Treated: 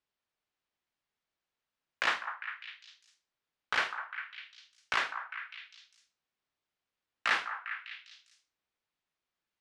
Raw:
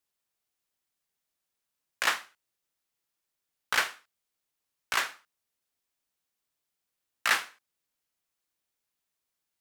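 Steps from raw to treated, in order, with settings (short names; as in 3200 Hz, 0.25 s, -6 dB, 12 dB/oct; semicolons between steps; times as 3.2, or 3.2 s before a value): LPF 3800 Hz 12 dB/oct; limiter -16 dBFS, peak gain reduction 4 dB; on a send: delay with a stepping band-pass 0.201 s, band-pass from 1100 Hz, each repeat 0.7 oct, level -6 dB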